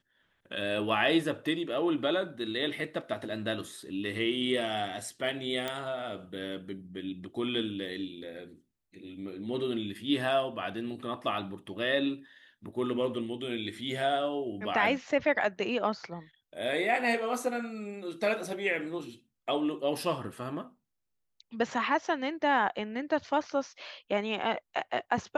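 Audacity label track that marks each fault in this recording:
5.680000	5.680000	pop -18 dBFS

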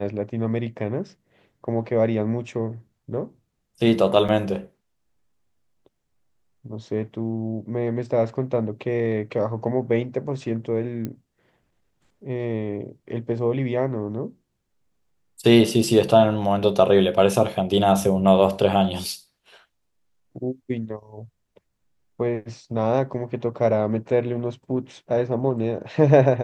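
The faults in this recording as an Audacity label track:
4.280000	4.290000	gap 6.2 ms
11.050000	11.050000	pop -17 dBFS

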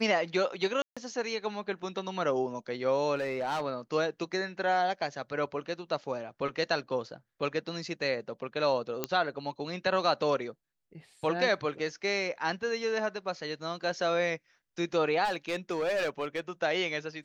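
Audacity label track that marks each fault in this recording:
0.820000	0.970000	gap 0.146 s
3.150000	3.610000	clipped -27.5 dBFS
9.040000	9.040000	pop -13 dBFS
15.240000	16.400000	clipped -26 dBFS

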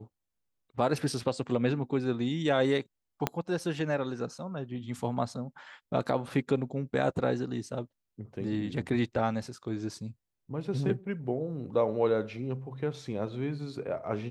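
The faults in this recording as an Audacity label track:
3.270000	3.270000	pop -12 dBFS

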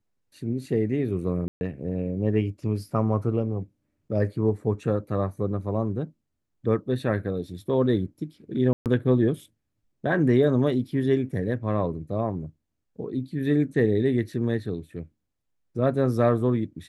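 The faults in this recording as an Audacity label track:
1.480000	1.610000	gap 0.131 s
8.730000	8.860000	gap 0.128 s

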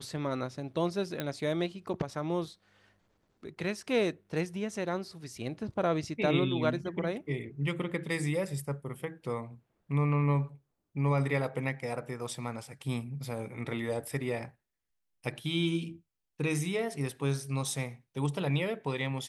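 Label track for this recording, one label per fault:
1.200000	1.200000	pop -18 dBFS

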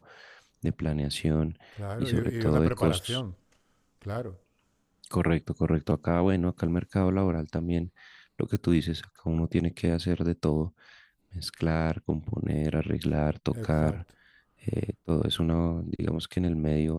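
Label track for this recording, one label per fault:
8.550000	8.550000	pop -17 dBFS

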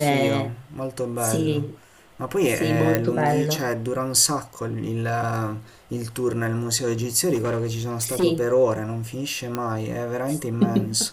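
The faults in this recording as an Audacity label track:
2.950000	2.950000	pop -6 dBFS
7.340000	8.240000	clipped -20 dBFS
9.550000	9.550000	pop -12 dBFS

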